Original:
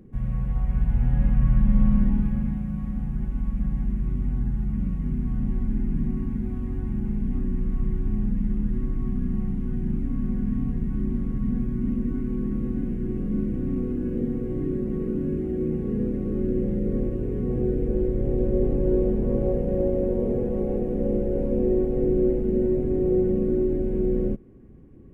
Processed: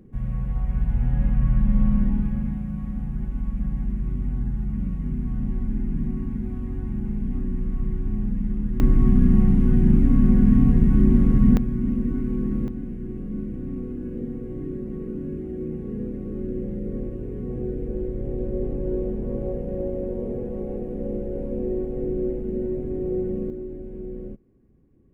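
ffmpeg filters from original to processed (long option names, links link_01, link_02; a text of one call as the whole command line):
ffmpeg -i in.wav -af "asetnsamples=nb_out_samples=441:pad=0,asendcmd='8.8 volume volume 10dB;11.57 volume volume 2dB;12.68 volume volume -4.5dB;23.5 volume volume -11dB',volume=-0.5dB" out.wav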